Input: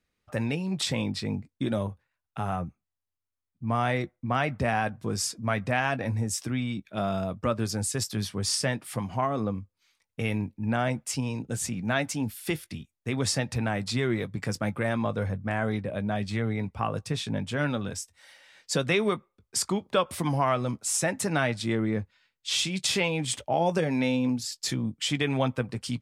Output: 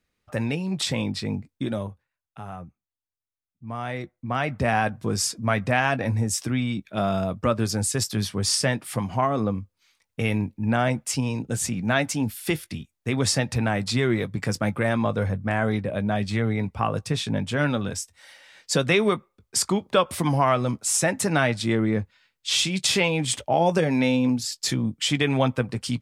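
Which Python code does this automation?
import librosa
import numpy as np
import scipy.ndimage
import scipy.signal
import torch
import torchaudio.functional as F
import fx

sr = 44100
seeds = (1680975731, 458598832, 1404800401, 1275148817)

y = fx.gain(x, sr, db=fx.line((1.49, 2.5), (2.41, -7.0), (3.66, -7.0), (4.75, 4.5)))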